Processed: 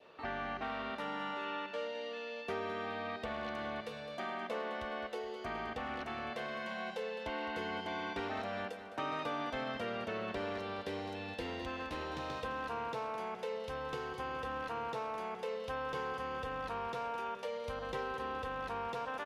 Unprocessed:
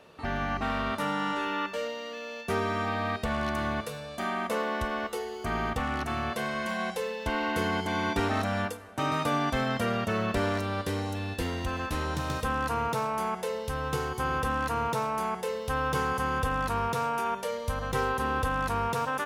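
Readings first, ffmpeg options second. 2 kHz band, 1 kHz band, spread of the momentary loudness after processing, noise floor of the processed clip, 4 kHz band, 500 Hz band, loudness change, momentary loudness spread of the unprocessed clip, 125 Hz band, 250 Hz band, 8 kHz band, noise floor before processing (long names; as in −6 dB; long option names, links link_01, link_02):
−9.0 dB, −9.5 dB, 2 LU, −47 dBFS, −8.0 dB, −7.5 dB, −9.5 dB, 5 LU, −17.0 dB, −12.0 dB, −18.0 dB, −40 dBFS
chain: -filter_complex "[0:a]acrossover=split=290 4700:gain=0.251 1 0.112[link_01][link_02][link_03];[link_01][link_02][link_03]amix=inputs=3:normalize=0,acompressor=threshold=-35dB:ratio=2,adynamicequalizer=threshold=0.00316:dfrequency=1300:dqfactor=1.4:tfrequency=1300:tqfactor=1.4:attack=5:release=100:ratio=0.375:range=2.5:mode=cutabove:tftype=bell,asplit=2[link_04][link_05];[link_05]aecho=0:1:210|420|630|840|1050|1260:0.251|0.141|0.0788|0.0441|0.0247|0.0138[link_06];[link_04][link_06]amix=inputs=2:normalize=0,volume=-2.5dB"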